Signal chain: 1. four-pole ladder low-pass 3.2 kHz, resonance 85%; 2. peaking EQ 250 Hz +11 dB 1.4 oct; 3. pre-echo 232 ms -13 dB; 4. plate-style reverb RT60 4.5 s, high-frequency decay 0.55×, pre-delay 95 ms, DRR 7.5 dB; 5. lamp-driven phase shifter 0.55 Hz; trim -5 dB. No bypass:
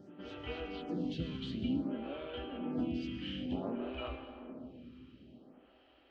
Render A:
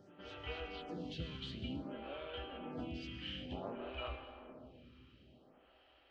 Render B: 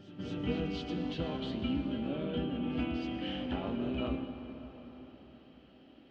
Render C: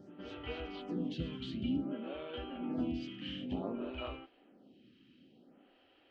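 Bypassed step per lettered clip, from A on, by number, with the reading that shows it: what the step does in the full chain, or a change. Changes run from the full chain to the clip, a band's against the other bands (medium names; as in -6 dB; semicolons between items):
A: 2, 250 Hz band -8.5 dB; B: 5, momentary loudness spread change -2 LU; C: 4, momentary loudness spread change -9 LU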